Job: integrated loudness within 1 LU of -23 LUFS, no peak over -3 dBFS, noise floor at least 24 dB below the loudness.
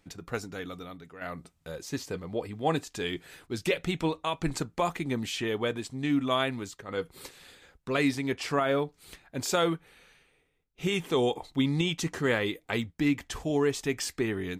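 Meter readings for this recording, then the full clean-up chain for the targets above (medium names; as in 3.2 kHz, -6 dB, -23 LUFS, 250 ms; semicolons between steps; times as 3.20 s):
loudness -30.5 LUFS; peak level -13.5 dBFS; loudness target -23.0 LUFS
-> trim +7.5 dB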